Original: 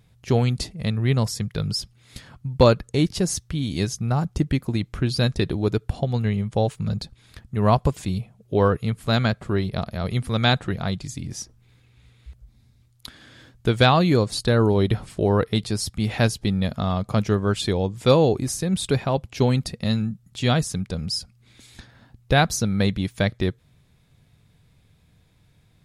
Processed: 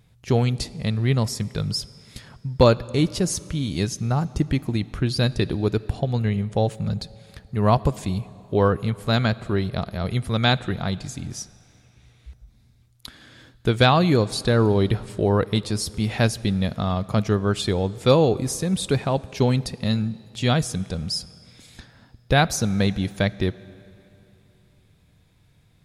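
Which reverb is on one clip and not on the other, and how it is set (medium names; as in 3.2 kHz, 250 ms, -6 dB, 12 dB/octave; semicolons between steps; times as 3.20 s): algorithmic reverb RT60 2.9 s, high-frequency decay 0.9×, pre-delay 0 ms, DRR 19 dB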